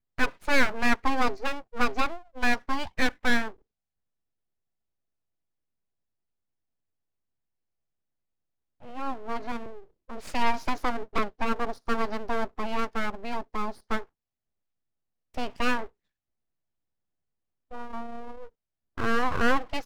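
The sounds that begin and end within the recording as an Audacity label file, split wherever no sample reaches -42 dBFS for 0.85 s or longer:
8.820000	14.040000	sound
15.340000	15.860000	sound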